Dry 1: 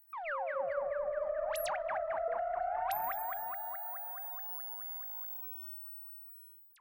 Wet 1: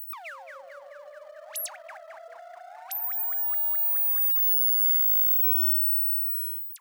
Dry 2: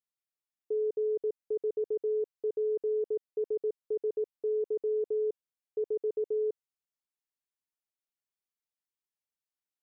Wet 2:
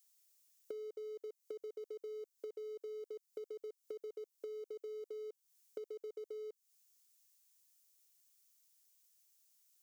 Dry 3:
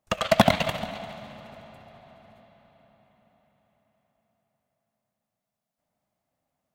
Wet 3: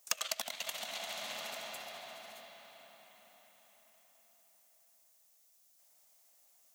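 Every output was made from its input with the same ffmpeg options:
-filter_complex "[0:a]highpass=340,equalizer=frequency=6300:width_type=o:width=0.78:gain=5,asplit=2[link_01][link_02];[link_02]aeval=exprs='sgn(val(0))*max(abs(val(0))-0.00562,0)':channel_layout=same,volume=-10.5dB[link_03];[link_01][link_03]amix=inputs=2:normalize=0,acompressor=threshold=-43dB:ratio=16,crystalizer=i=10:c=0,volume=-2dB"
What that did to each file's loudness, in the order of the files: +16.0, −15.0, −16.0 LU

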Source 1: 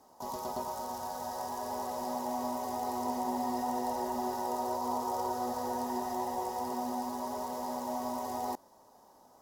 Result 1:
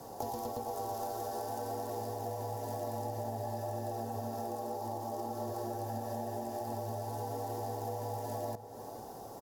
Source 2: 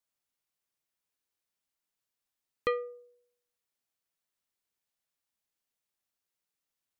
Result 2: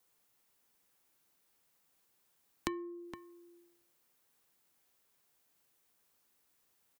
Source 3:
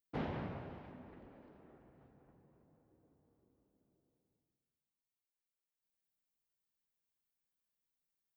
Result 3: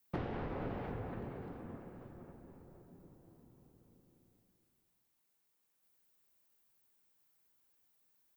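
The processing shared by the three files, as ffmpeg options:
-filter_complex "[0:a]highpass=250,highshelf=frequency=2300:gain=-12,bandreject=frequency=770:width=13,acompressor=threshold=-51dB:ratio=16,crystalizer=i=1.5:c=0,afreqshift=-140,asplit=2[link_01][link_02];[link_02]adelay=466.5,volume=-11dB,highshelf=frequency=4000:gain=-10.5[link_03];[link_01][link_03]amix=inputs=2:normalize=0,volume=15.5dB"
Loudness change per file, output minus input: −3.5, −8.5, +1.5 LU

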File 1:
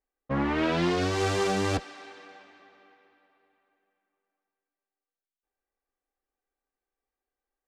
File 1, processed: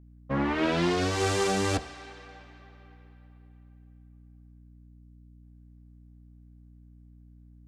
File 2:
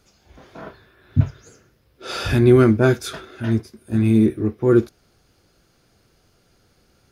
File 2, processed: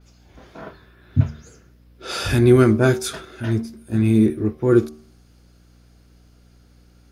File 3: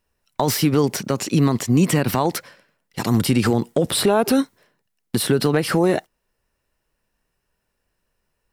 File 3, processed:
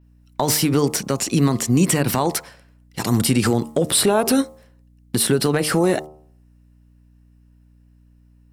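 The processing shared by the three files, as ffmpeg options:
-af "bandreject=frequency=76.08:width_type=h:width=4,bandreject=frequency=152.16:width_type=h:width=4,bandreject=frequency=228.24:width_type=h:width=4,bandreject=frequency=304.32:width_type=h:width=4,bandreject=frequency=380.4:width_type=h:width=4,bandreject=frequency=456.48:width_type=h:width=4,bandreject=frequency=532.56:width_type=h:width=4,bandreject=frequency=608.64:width_type=h:width=4,bandreject=frequency=684.72:width_type=h:width=4,bandreject=frequency=760.8:width_type=h:width=4,bandreject=frequency=836.88:width_type=h:width=4,bandreject=frequency=912.96:width_type=h:width=4,bandreject=frequency=989.04:width_type=h:width=4,bandreject=frequency=1065.12:width_type=h:width=4,bandreject=frequency=1141.2:width_type=h:width=4,bandreject=frequency=1217.28:width_type=h:width=4,bandreject=frequency=1293.36:width_type=h:width=4,adynamicequalizer=threshold=0.00631:dfrequency=8900:dqfactor=0.86:tfrequency=8900:tqfactor=0.86:attack=5:release=100:ratio=0.375:range=3.5:mode=boostabove:tftype=bell,aeval=exprs='val(0)+0.00282*(sin(2*PI*60*n/s)+sin(2*PI*2*60*n/s)/2+sin(2*PI*3*60*n/s)/3+sin(2*PI*4*60*n/s)/4+sin(2*PI*5*60*n/s)/5)':channel_layout=same"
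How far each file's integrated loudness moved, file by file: 0.0, −0.5, +0.5 LU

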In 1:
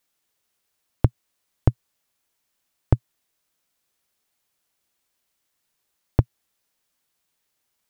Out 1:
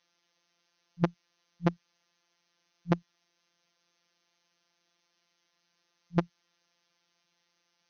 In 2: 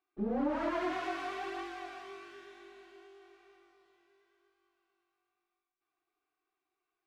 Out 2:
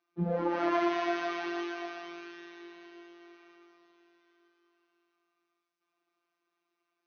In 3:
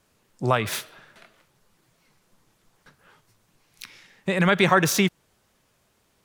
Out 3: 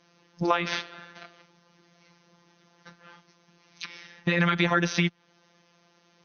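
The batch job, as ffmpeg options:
-filter_complex "[0:a]afftfilt=real='re*between(b*sr/4096,130,6400)':imag='im*between(b*sr/4096,130,6400)':win_size=4096:overlap=0.75,afftfilt=real='hypot(re,im)*cos(PI*b)':imag='0':win_size=1024:overlap=0.75,acrossover=split=970|4200[link_01][link_02][link_03];[link_01]acompressor=threshold=-33dB:ratio=4[link_04];[link_02]acompressor=threshold=-33dB:ratio=4[link_05];[link_03]acompressor=threshold=-54dB:ratio=4[link_06];[link_04][link_05][link_06]amix=inputs=3:normalize=0,volume=8.5dB"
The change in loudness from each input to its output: −7.0, +4.5, −4.0 LU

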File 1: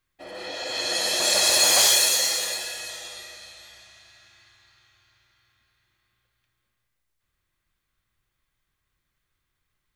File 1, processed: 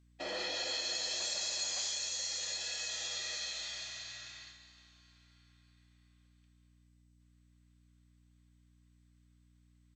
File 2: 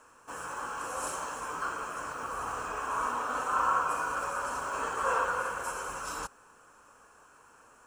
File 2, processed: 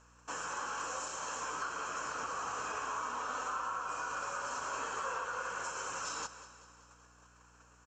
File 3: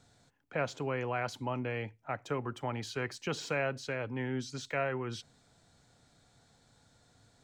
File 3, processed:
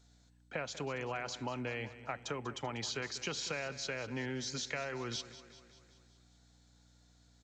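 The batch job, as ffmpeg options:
-af "agate=range=-9dB:threshold=-56dB:ratio=16:detection=peak,highpass=110,highshelf=frequency=2700:gain=10.5,acompressor=threshold=-35dB:ratio=8,aeval=exprs='val(0)+0.000631*(sin(2*PI*60*n/s)+sin(2*PI*2*60*n/s)/2+sin(2*PI*3*60*n/s)/3+sin(2*PI*4*60*n/s)/4+sin(2*PI*5*60*n/s)/5)':channel_layout=same,aecho=1:1:193|386|579|772|965|1158:0.178|0.103|0.0598|0.0347|0.0201|0.0117,aresample=16000,aresample=44100" -ar 32000 -c:a mp2 -b:a 192k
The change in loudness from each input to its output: −16.5, −5.5, −3.0 LU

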